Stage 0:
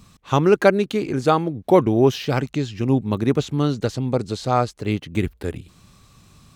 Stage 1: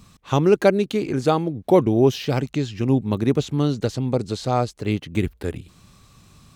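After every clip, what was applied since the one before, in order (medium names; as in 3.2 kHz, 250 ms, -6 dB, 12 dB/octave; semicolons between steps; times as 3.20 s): dynamic bell 1.4 kHz, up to -6 dB, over -32 dBFS, Q 1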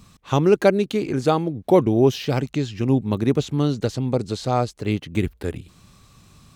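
no audible change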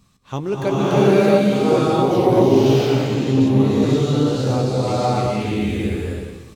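doubling 15 ms -10.5 dB; swelling reverb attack 660 ms, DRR -11.5 dB; trim -8 dB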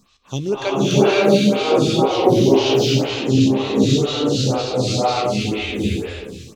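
high-order bell 4.2 kHz +10 dB; lamp-driven phase shifter 2 Hz; trim +2.5 dB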